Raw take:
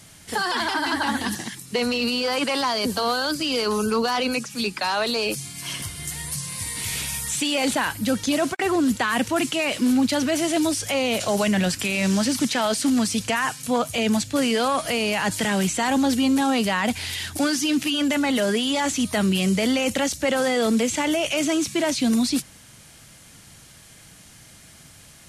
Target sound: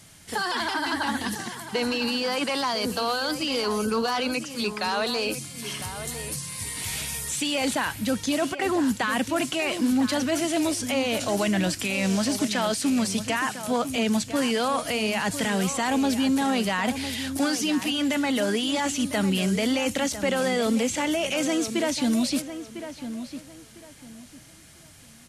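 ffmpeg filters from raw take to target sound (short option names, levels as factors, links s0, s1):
-filter_complex "[0:a]asplit=2[s0][s1];[s1]adelay=1002,lowpass=f=2500:p=1,volume=0.299,asplit=2[s2][s3];[s3]adelay=1002,lowpass=f=2500:p=1,volume=0.26,asplit=2[s4][s5];[s5]adelay=1002,lowpass=f=2500:p=1,volume=0.26[s6];[s0][s2][s4][s6]amix=inputs=4:normalize=0,volume=0.708"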